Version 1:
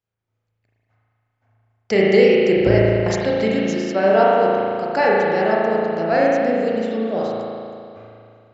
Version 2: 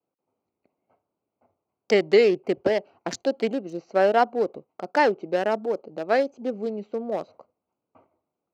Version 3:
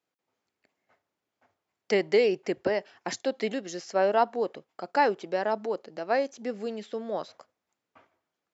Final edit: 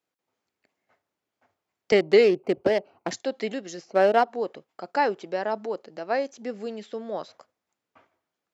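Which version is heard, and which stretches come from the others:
3
1.92–3.11 s: from 2
3.82–4.26 s: from 2, crossfade 0.16 s
not used: 1

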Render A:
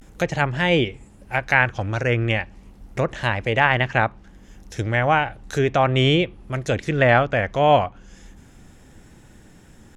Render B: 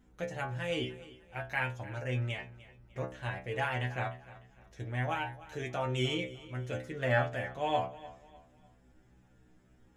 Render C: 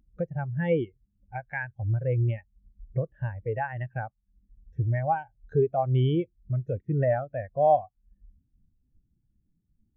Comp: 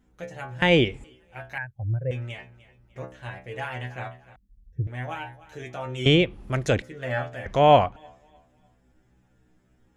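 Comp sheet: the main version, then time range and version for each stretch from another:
B
0.62–1.04 s: from A
1.58–2.11 s: from C
4.36–4.87 s: from C
6.06–6.82 s: from A
7.46–7.96 s: from A

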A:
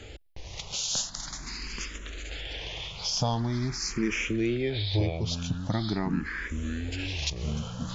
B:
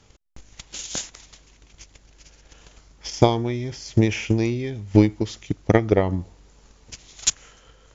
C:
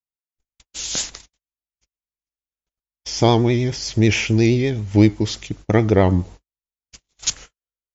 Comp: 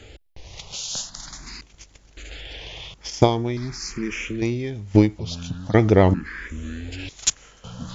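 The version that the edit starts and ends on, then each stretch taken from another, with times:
A
1.61–2.17 s: from B
2.94–3.57 s: from B
4.42–5.19 s: from B
5.74–6.14 s: from C
7.09–7.64 s: from B

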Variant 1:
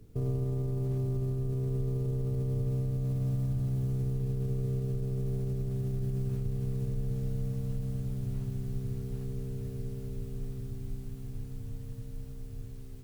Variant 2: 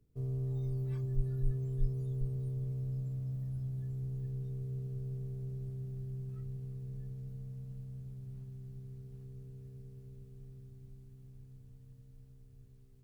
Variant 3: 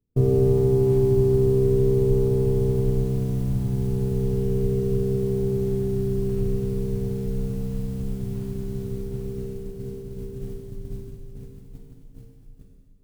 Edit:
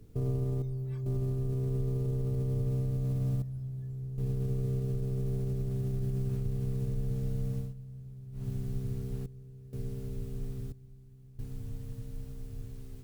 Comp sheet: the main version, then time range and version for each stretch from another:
1
0.62–1.06 s: from 2
3.42–4.18 s: from 2
7.66–8.40 s: from 2, crossfade 0.16 s
9.26–9.73 s: from 2
10.72–11.39 s: from 2
not used: 3

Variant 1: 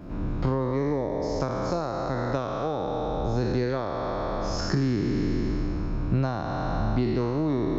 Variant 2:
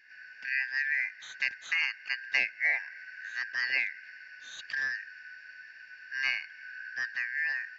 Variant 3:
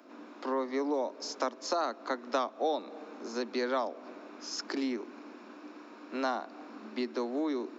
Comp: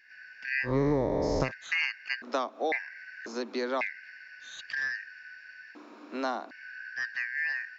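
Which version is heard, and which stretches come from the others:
2
0.68–1.47 s: from 1, crossfade 0.10 s
2.22–2.72 s: from 3
3.26–3.81 s: from 3
5.75–6.51 s: from 3

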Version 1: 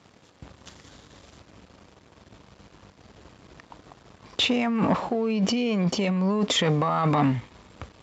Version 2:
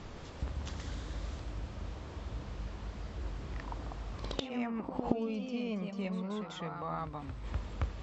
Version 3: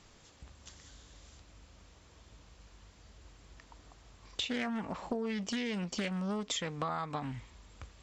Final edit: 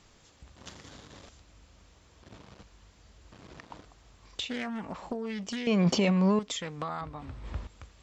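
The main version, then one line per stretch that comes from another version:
3
0.56–1.29 s: from 1
2.23–2.63 s: from 1
3.32–3.85 s: from 1
5.67–6.39 s: from 1
7.01–7.67 s: from 2

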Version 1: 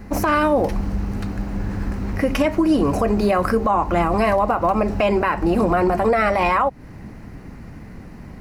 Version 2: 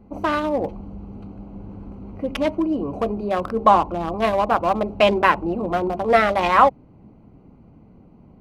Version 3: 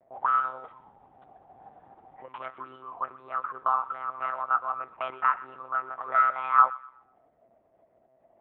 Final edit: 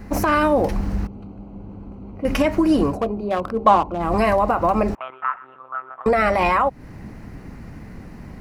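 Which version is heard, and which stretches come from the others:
1
1.07–2.25 s: from 2
2.91–4.06 s: from 2, crossfade 0.16 s
4.95–6.06 s: from 3

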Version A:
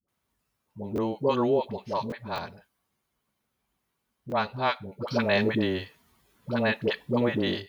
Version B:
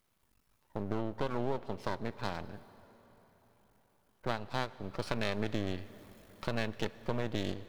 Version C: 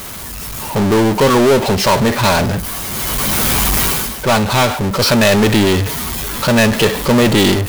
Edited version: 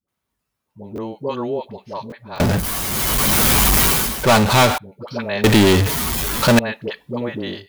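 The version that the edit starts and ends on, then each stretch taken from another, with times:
A
2.40–4.78 s: from C
5.44–6.59 s: from C
not used: B

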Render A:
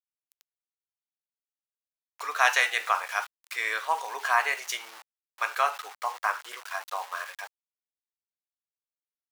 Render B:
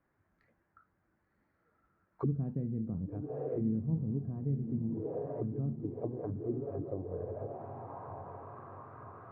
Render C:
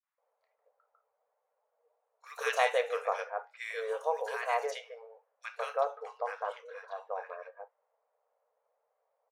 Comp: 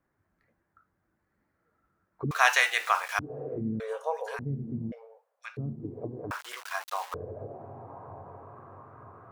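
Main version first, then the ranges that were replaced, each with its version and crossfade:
B
2.31–3.19 s: from A
3.80–4.39 s: from C
4.92–5.57 s: from C
6.31–7.14 s: from A

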